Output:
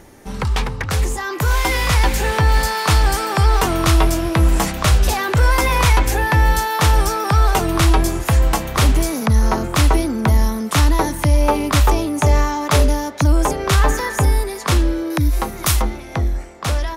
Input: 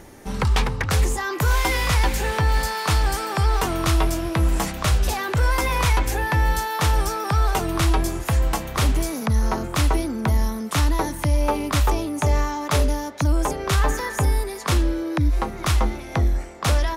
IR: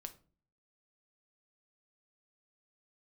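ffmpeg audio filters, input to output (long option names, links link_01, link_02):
-filter_complex "[0:a]asettb=1/sr,asplit=3[link_01][link_02][link_03];[link_01]atrim=end=15.104[link_04];[link_02]atrim=start=15.1:end=15.82,asetpts=PTS-STARTPTS,afade=type=in:duration=0.004:curve=qsin,afade=type=out:start_time=0.716:duration=0.004:curve=qsin,aemphasis=mode=production:type=50fm[link_05];[link_03]atrim=start=15.816[link_06];[link_04][link_05]acrossfade=duration=0.004:curve1=hsin:curve2=qsin[link_07];[link_07][link_06]acrossfade=duration=0.004:curve1=qsin:curve2=hsin,dynaudnorm=framelen=380:gausssize=9:maxgain=6dB"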